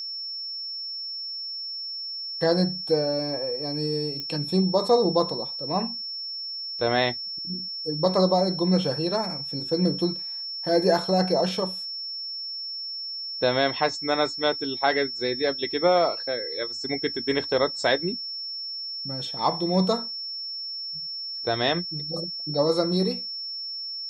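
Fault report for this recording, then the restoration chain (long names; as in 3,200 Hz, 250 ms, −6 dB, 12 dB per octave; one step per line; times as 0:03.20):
whistle 5,400 Hz −31 dBFS
0:04.20: click −19 dBFS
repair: click removal
notch filter 5,400 Hz, Q 30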